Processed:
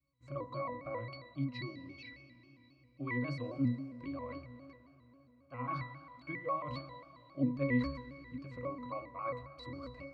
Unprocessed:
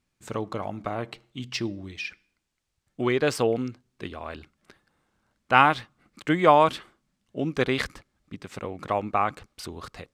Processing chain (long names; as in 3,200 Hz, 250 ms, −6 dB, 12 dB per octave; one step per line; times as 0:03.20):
low-shelf EQ 470 Hz −7 dB
hum removal 50.36 Hz, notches 35
reversed playback
downward compressor 8 to 1, threshold −30 dBFS, peak gain reduction 16.5 dB
reversed playback
resonances in every octave C, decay 0.43 s
on a send at −12.5 dB: convolution reverb RT60 4.0 s, pre-delay 102 ms
on the sum: pitch modulation by a square or saw wave square 3.7 Hz, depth 100 cents
level +15 dB